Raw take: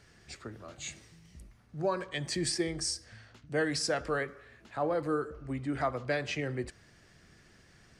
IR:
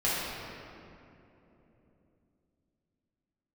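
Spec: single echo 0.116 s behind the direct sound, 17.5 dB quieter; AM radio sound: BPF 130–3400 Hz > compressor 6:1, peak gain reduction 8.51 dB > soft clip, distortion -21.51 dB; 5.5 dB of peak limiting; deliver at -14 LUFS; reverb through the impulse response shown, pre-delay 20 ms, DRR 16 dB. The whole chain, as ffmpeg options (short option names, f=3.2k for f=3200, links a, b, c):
-filter_complex "[0:a]alimiter=level_in=0.5dB:limit=-24dB:level=0:latency=1,volume=-0.5dB,aecho=1:1:116:0.133,asplit=2[a][b];[1:a]atrim=start_sample=2205,adelay=20[c];[b][c]afir=irnorm=-1:irlink=0,volume=-27.5dB[d];[a][d]amix=inputs=2:normalize=0,highpass=130,lowpass=3.4k,acompressor=threshold=-37dB:ratio=6,asoftclip=threshold=-31.5dB,volume=29.5dB"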